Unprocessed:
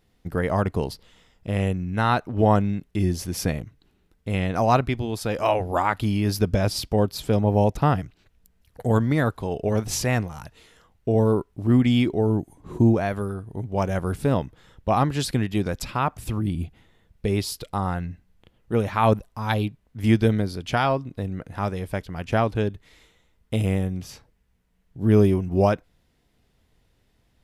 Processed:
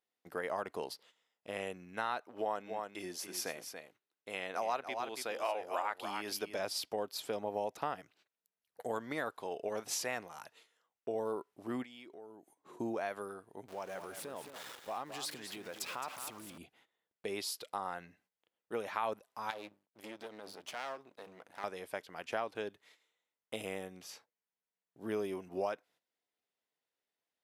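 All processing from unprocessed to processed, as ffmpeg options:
-filter_complex "[0:a]asettb=1/sr,asplit=3[s0][s1][s2];[s0]atrim=end=2.244[s3];[s1]atrim=start=2.24:end=6.59,asetpts=PTS-STARTPTS,afade=t=in:d=0.004:c=qsin,afade=t=out:st=4.346:d=0.004:c=qsin,lowshelf=f=210:g=-9,aecho=1:1:283:0.355,atrim=end_sample=191835[s4];[s2]atrim=start=6.586[s5];[s3][s4]acrossfade=d=0.004:c1=hsin:c2=qsin[s6];[s6][s5]acrossfade=d=0.004:c1=qsin:c2=hsin,asettb=1/sr,asplit=3[s7][s8][s9];[s7]atrim=end=11.834[s10];[s8]atrim=start=11.83:end=12.8,asetpts=PTS-STARTPTS,afade=t=in:d=0.004:c=qsin,afade=t=out:st=0.966:d=0.004:c=qsin,lowshelf=f=110:g=-9,acompressor=threshold=0.0141:ratio=5:attack=3.2:release=140:knee=1:detection=peak[s11];[s9]atrim=start=12.796[s12];[s10][s11]acrossfade=d=0.004:c1=hsin:c2=qsin[s13];[s13][s12]acrossfade=d=0.004:c1=qsin:c2=hsin,asettb=1/sr,asplit=3[s14][s15][s16];[s14]atrim=end=13.684[s17];[s15]atrim=start=13.68:end=16.58,asetpts=PTS-STARTPTS,afade=t=in:d=0.004:c=qsin,afade=t=out:st=2.896:d=0.004:c=qsin,aeval=exprs='val(0)+0.5*0.0188*sgn(val(0))':c=same,acompressor=threshold=0.0447:ratio=5:attack=3.2:release=140:knee=1:detection=peak,aecho=1:1:216:0.355,atrim=end_sample=127890[s18];[s16]atrim=start=16.576[s19];[s17][s18]acrossfade=d=0.004:c1=hsin:c2=qsin[s20];[s20][s19]acrossfade=d=0.004:c1=qsin:c2=hsin,asettb=1/sr,asplit=3[s21][s22][s23];[s21]atrim=end=19.504[s24];[s22]atrim=start=19.5:end=21.64,asetpts=PTS-STARTPTS,afade=t=in:d=0.004:c=qsin,afade=t=out:st=2.136:d=0.004:c=qsin,bandreject=f=50:t=h:w=6,bandreject=f=100:t=h:w=6,bandreject=f=150:t=h:w=6,bandreject=f=200:t=h:w=6,acompressor=threshold=0.0631:ratio=6:attack=3.2:release=140:knee=1:detection=peak,aeval=exprs='max(val(0),0)':c=same[s25];[s23]atrim=start=21.636[s26];[s24][s25]acrossfade=d=0.004:c1=hsin:c2=qsin[s27];[s27][s26]acrossfade=d=0.004:c1=qsin:c2=hsin,agate=range=0.224:threshold=0.00316:ratio=16:detection=peak,highpass=490,acompressor=threshold=0.0447:ratio=2.5,volume=0.447"

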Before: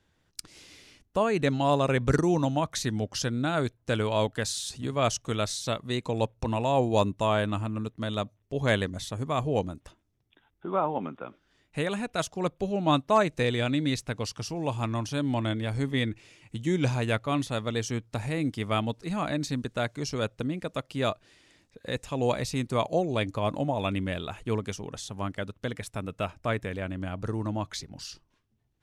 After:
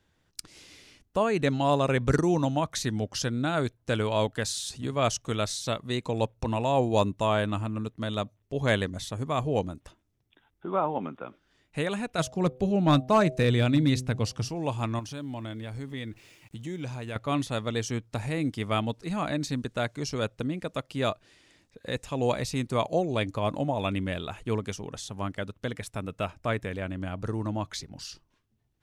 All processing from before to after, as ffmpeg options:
-filter_complex "[0:a]asettb=1/sr,asplit=3[s0][s1][s2];[s0]atrim=end=12.184[s3];[s1]atrim=start=12.18:end=14.49,asetpts=PTS-STARTPTS,afade=t=in:d=0.004:c=qsin,afade=t=out:st=2.306:d=0.004:c=qsin,equalizer=f=120:w=0.52:g=7.5,bandreject=f=127.2:t=h:w=4,bandreject=f=254.4:t=h:w=4,bandreject=f=381.6:t=h:w=4,bandreject=f=508.8:t=h:w=4,bandreject=f=636:t=h:w=4,bandreject=f=763.2:t=h:w=4,asoftclip=type=hard:threshold=0.2[s4];[s2]atrim=start=14.486[s5];[s3][s4]acrossfade=d=0.004:c1=hsin:c2=qsin[s6];[s6][s5]acrossfade=d=0.004:c1=qsin:c2=hsin,asettb=1/sr,asplit=3[s7][s8][s9];[s7]atrim=end=14.994[s10];[s8]atrim=start=14.99:end=17.16,asetpts=PTS-STARTPTS,afade=t=in:d=0.004:c=qsin,afade=t=out:st=2.166:d=0.004:c=qsin,acompressor=threshold=0.0112:ratio=2:attack=3.2:release=140:knee=1:detection=peak,aeval=exprs='val(0)*gte(abs(val(0)),0.00119)':c=same[s11];[s9]atrim=start=17.156[s12];[s10][s11]acrossfade=d=0.004:c1=hsin:c2=qsin[s13];[s13][s12]acrossfade=d=0.004:c1=qsin:c2=hsin"

